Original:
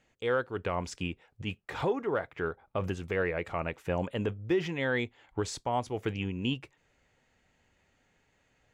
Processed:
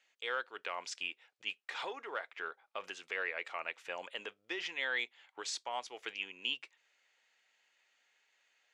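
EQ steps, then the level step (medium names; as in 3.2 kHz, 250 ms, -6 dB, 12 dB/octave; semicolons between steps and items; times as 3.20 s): band-pass 350–3900 Hz; differentiator; +10.5 dB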